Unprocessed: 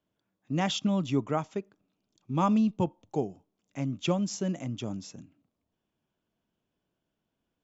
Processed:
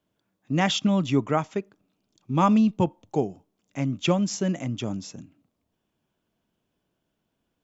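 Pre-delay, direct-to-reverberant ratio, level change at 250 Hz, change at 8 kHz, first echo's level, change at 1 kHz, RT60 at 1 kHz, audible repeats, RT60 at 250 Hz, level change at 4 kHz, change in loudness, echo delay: none, none, +5.0 dB, n/a, none, +5.5 dB, none, none, none, +6.0 dB, +5.0 dB, none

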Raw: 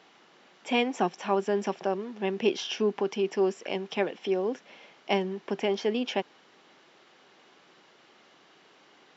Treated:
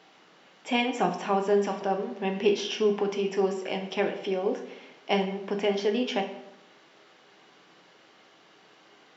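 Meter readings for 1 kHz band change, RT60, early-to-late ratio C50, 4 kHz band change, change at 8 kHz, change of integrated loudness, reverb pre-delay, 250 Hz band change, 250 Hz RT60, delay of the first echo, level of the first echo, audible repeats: +2.5 dB, 0.85 s, 8.5 dB, +1.5 dB, n/a, +1.5 dB, 6 ms, +1.0 dB, 0.95 s, none, none, none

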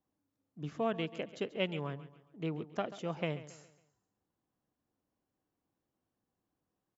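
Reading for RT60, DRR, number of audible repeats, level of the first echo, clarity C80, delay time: none, none, 3, -15.5 dB, none, 0.137 s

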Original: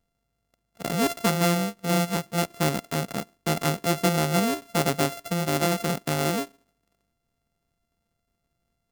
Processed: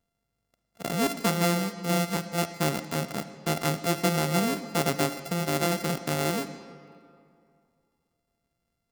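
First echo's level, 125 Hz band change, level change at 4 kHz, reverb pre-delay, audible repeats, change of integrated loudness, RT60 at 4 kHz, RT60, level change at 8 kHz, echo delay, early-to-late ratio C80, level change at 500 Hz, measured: none, -2.5 dB, -2.0 dB, 33 ms, none, -2.0 dB, 1.4 s, 2.4 s, -2.0 dB, none, 12.5 dB, -2.0 dB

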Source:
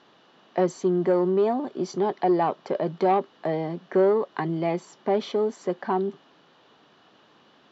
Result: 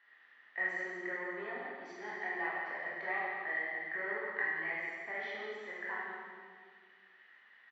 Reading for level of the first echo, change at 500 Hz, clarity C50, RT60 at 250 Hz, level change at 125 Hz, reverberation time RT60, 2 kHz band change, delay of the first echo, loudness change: -6.5 dB, -21.5 dB, -2.5 dB, 2.3 s, under -25 dB, 1.8 s, +7.0 dB, 0.169 s, -12.5 dB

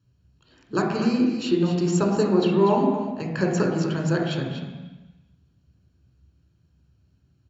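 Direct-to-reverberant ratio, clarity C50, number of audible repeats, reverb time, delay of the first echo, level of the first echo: 0.0 dB, 2.5 dB, 1, 1.1 s, 0.243 s, -9.0 dB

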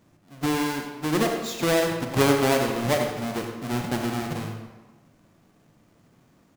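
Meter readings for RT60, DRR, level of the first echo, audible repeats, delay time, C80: 1.3 s, 2.5 dB, -9.5 dB, 1, 92 ms, 5.0 dB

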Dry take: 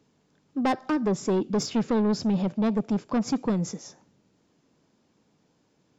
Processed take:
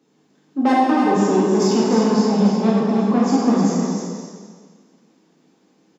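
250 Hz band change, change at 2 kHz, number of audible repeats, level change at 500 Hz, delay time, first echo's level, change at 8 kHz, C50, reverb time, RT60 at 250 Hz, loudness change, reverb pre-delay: +9.5 dB, +9.0 dB, 1, +9.5 dB, 0.305 s, -5.5 dB, n/a, -3.0 dB, 1.7 s, 1.7 s, +9.0 dB, 5 ms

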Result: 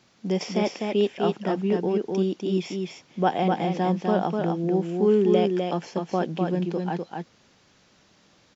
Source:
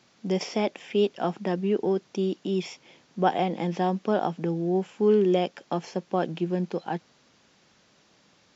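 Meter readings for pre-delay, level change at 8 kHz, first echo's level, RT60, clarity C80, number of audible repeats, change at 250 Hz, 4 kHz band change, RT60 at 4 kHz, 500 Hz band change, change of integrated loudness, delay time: none, n/a, -4.0 dB, none, none, 1, +3.0 dB, +1.5 dB, none, +2.0 dB, +2.0 dB, 0.251 s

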